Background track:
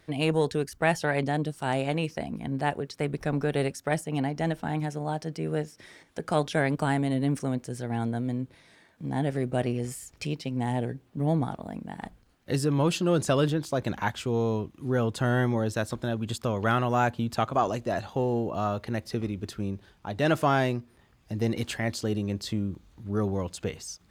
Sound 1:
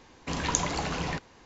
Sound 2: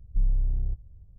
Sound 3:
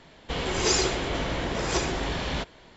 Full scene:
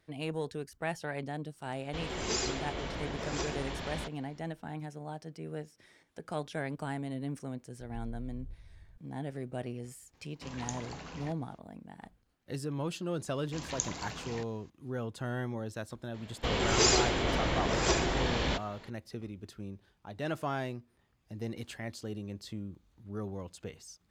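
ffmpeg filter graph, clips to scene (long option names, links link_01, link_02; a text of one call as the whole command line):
ffmpeg -i bed.wav -i cue0.wav -i cue1.wav -i cue2.wav -filter_complex "[3:a]asplit=2[link_01][link_02];[1:a]asplit=2[link_03][link_04];[0:a]volume=-11dB[link_05];[2:a]acompressor=threshold=-36dB:ratio=6:attack=3.2:release=140:knee=1:detection=peak[link_06];[link_04]highshelf=frequency=3500:gain=8.5[link_07];[link_01]atrim=end=2.76,asetpts=PTS-STARTPTS,volume=-9.5dB,afade=type=in:duration=0.004:curve=hsin,afade=type=out:start_time=2.756:duration=0.004:curve=hsin,adelay=1640[link_08];[link_06]atrim=end=1.18,asetpts=PTS-STARTPTS,volume=-5dB,afade=type=in:duration=0.004:curve=hsin,afade=type=out:start_time=1.176:duration=0.004:curve=hsin,adelay=7800[link_09];[link_03]atrim=end=1.45,asetpts=PTS-STARTPTS,volume=-14dB,afade=type=in:duration=0.004:curve=hsin,afade=type=out:start_time=1.446:duration=0.004:curve=hsin,adelay=10140[link_10];[link_07]atrim=end=1.45,asetpts=PTS-STARTPTS,volume=-13dB,afade=type=in:duration=0.004:curve=hsin,afade=type=out:start_time=1.446:duration=0.004:curve=hsin,adelay=13250[link_11];[link_02]atrim=end=2.76,asetpts=PTS-STARTPTS,volume=-1.5dB,afade=type=in:duration=0.004:curve=hsin,afade=type=out:start_time=2.756:duration=0.004:curve=hsin,adelay=16140[link_12];[link_05][link_08][link_09][link_10][link_11][link_12]amix=inputs=6:normalize=0" out.wav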